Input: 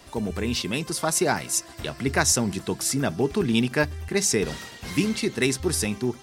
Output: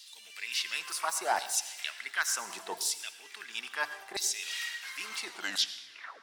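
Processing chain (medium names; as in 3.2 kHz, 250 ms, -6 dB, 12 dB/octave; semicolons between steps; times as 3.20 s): tape stop on the ending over 0.99 s; reverse; compression 5:1, threshold -30 dBFS, peak gain reduction 13 dB; reverse; high-pass 110 Hz; LFO high-pass saw down 0.72 Hz 660–4000 Hz; harmony voices +12 st -15 dB; on a send: reverberation, pre-delay 76 ms, DRR 13 dB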